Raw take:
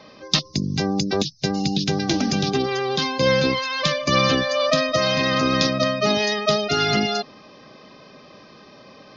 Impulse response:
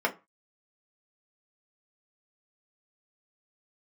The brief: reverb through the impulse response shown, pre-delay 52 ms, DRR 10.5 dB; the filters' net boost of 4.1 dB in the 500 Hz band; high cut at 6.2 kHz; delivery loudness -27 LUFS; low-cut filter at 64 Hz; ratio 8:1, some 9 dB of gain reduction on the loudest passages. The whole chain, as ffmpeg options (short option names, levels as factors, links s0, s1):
-filter_complex "[0:a]highpass=64,lowpass=6200,equalizer=f=500:t=o:g=5,acompressor=threshold=0.0891:ratio=8,asplit=2[s0][s1];[1:a]atrim=start_sample=2205,adelay=52[s2];[s1][s2]afir=irnorm=-1:irlink=0,volume=0.0794[s3];[s0][s3]amix=inputs=2:normalize=0,volume=0.794"